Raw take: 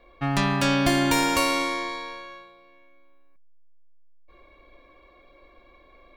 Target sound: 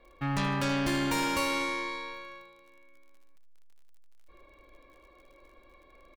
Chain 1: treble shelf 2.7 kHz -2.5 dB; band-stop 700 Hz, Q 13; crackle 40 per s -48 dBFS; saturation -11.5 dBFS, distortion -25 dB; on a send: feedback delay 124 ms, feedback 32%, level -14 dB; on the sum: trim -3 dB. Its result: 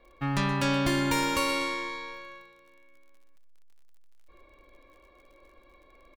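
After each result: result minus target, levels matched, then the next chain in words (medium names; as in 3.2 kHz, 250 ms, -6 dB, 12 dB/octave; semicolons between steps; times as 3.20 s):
echo 46 ms late; saturation: distortion -12 dB
treble shelf 2.7 kHz -2.5 dB; band-stop 700 Hz, Q 13; crackle 40 per s -48 dBFS; saturation -11.5 dBFS, distortion -25 dB; on a send: feedback delay 78 ms, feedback 32%, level -14 dB; on the sum: trim -3 dB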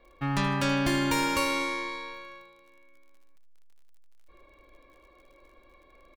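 saturation: distortion -12 dB
treble shelf 2.7 kHz -2.5 dB; band-stop 700 Hz, Q 13; crackle 40 per s -48 dBFS; saturation -20.5 dBFS, distortion -13 dB; on a send: feedback delay 78 ms, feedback 32%, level -14 dB; on the sum: trim -3 dB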